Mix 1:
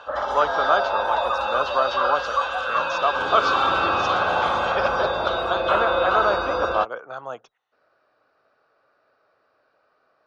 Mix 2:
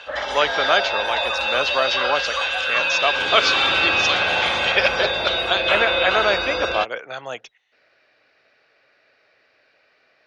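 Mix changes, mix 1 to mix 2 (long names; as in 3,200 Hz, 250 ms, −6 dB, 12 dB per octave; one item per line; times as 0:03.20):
speech +3.5 dB
master: add high shelf with overshoot 1,600 Hz +8.5 dB, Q 3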